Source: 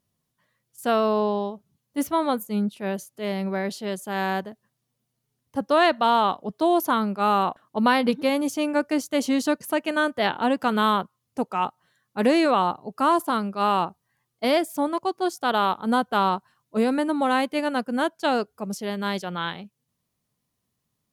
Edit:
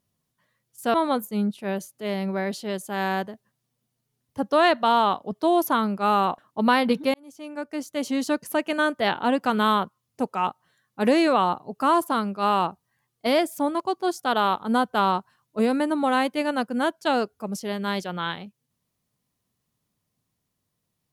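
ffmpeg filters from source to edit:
ffmpeg -i in.wav -filter_complex "[0:a]asplit=3[link_01][link_02][link_03];[link_01]atrim=end=0.942[link_04];[link_02]atrim=start=2.118:end=8.32,asetpts=PTS-STARTPTS,afade=type=out:start_time=6.198:duration=0.004:curve=hsin[link_05];[link_03]atrim=start=8.32,asetpts=PTS-STARTPTS,afade=type=in:duration=1.4[link_06];[link_05][link_06]concat=n=2:v=0:a=1[link_07];[link_04][link_07]acrossfade=duration=0.004:curve1=hsin:curve2=hsin" out.wav

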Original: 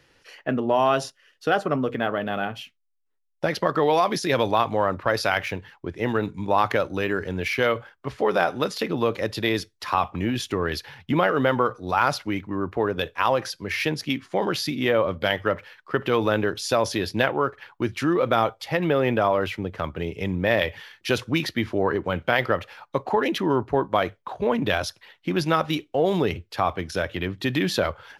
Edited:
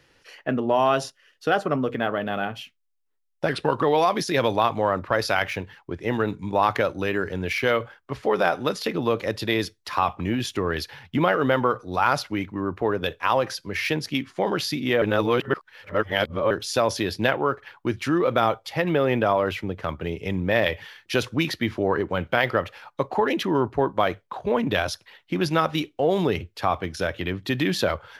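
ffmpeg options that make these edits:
ffmpeg -i in.wav -filter_complex "[0:a]asplit=5[link_01][link_02][link_03][link_04][link_05];[link_01]atrim=end=3.494[link_06];[link_02]atrim=start=3.49:end=3.78,asetpts=PTS-STARTPTS,asetrate=37926,aresample=44100[link_07];[link_03]atrim=start=3.776:end=14.972[link_08];[link_04]atrim=start=14.968:end=16.462,asetpts=PTS-STARTPTS,areverse[link_09];[link_05]atrim=start=16.458[link_10];[link_06][link_07]acrossfade=duration=0.004:curve1=hsin:curve2=hsin[link_11];[link_11][link_08]acrossfade=duration=0.004:curve1=hsin:curve2=hsin[link_12];[link_12][link_09]acrossfade=duration=0.004:curve1=hsin:curve2=hsin[link_13];[link_13][link_10]acrossfade=duration=0.004:curve1=hsin:curve2=hsin" out.wav

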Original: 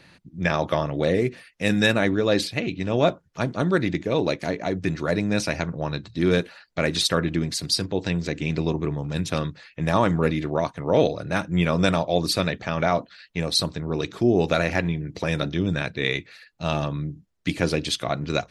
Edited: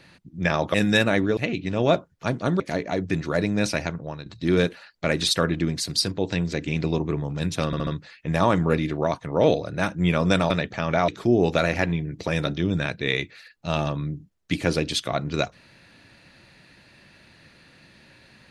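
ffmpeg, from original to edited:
ffmpeg -i in.wav -filter_complex "[0:a]asplit=10[link_01][link_02][link_03][link_04][link_05][link_06][link_07][link_08][link_09][link_10];[link_01]atrim=end=0.742[link_11];[link_02]atrim=start=1.628:end=2.262[link_12];[link_03]atrim=start=2.508:end=3.742[link_13];[link_04]atrim=start=4.338:end=6,asetpts=PTS-STARTPTS,afade=type=out:start_time=1.162:duration=0.5:silence=0.266073[link_14];[link_05]atrim=start=6:end=9.472,asetpts=PTS-STARTPTS,afade=type=in:duration=0.004:curve=hsin:silence=0.266073[link_15];[link_06]atrim=start=9.398:end=9.472[link_16];[link_07]atrim=start=9.398:end=9.472[link_17];[link_08]atrim=start=9.398:end=12.032[link_18];[link_09]atrim=start=12.388:end=12.972[link_19];[link_10]atrim=start=14.038[link_20];[link_11][link_12]acrossfade=duration=0.004:curve1=hsin:curve2=hsin[link_21];[link_21][link_13]acrossfade=duration=0.004:curve1=hsin:curve2=hsin[link_22];[link_14][link_15]concat=n=2:v=0:a=1[link_23];[link_22][link_23]acrossfade=duration=0.004:curve1=hsin:curve2=hsin[link_24];[link_24][link_16]acrossfade=duration=0.004:curve1=hsin:curve2=hsin[link_25];[link_25][link_17]acrossfade=duration=0.004:curve1=hsin:curve2=hsin[link_26];[link_26][link_18]acrossfade=duration=0.004:curve1=hsin:curve2=hsin[link_27];[link_27][link_19]acrossfade=duration=0.004:curve1=hsin:curve2=hsin[link_28];[link_28][link_20]acrossfade=duration=0.004:curve1=hsin:curve2=hsin" out.wav

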